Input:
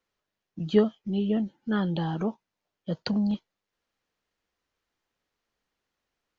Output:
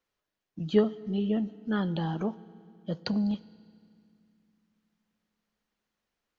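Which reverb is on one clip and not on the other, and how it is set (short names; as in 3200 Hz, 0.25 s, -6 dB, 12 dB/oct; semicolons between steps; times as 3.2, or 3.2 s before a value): FDN reverb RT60 2.3 s, low-frequency decay 1.55×, high-frequency decay 0.9×, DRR 17.5 dB; gain -2 dB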